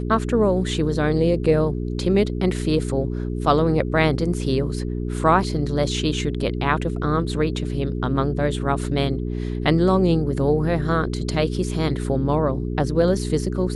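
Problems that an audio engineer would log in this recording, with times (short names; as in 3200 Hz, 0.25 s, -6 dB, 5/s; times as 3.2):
hum 60 Hz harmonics 7 -26 dBFS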